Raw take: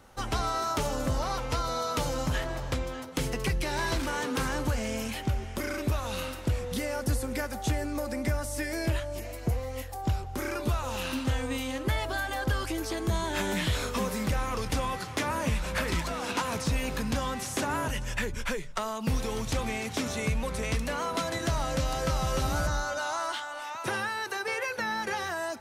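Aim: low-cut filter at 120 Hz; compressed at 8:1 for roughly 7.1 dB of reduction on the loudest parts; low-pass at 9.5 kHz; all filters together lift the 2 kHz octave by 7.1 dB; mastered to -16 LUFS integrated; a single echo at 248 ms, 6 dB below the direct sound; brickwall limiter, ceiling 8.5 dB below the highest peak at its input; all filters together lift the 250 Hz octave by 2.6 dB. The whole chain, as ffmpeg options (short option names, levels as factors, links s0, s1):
-af "highpass=120,lowpass=9500,equalizer=f=250:t=o:g=3.5,equalizer=f=2000:t=o:g=9,acompressor=threshold=0.0316:ratio=8,alimiter=level_in=1.12:limit=0.0631:level=0:latency=1,volume=0.891,aecho=1:1:248:0.501,volume=7.5"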